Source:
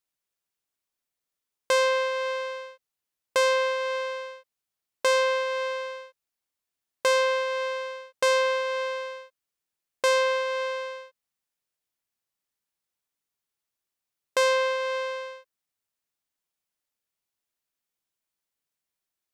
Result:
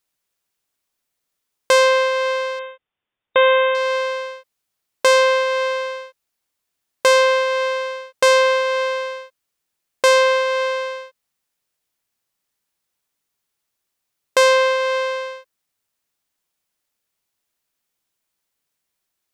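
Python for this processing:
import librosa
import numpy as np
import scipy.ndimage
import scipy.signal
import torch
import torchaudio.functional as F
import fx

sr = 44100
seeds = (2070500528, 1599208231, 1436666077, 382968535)

y = fx.brickwall_lowpass(x, sr, high_hz=3700.0, at=(2.59, 3.75))
y = F.gain(torch.from_numpy(y), 8.5).numpy()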